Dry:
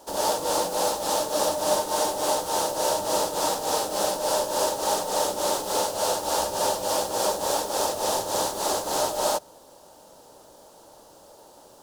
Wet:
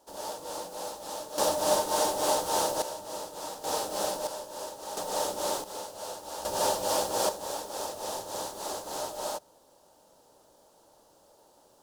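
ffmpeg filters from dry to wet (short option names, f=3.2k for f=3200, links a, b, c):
-af "asetnsamples=n=441:p=0,asendcmd='1.38 volume volume -2dB;2.82 volume volume -13.5dB;3.64 volume volume -5.5dB;4.27 volume volume -14.5dB;4.97 volume volume -5.5dB;5.64 volume volume -14dB;6.45 volume volume -2.5dB;7.29 volume volume -10dB',volume=-13dB"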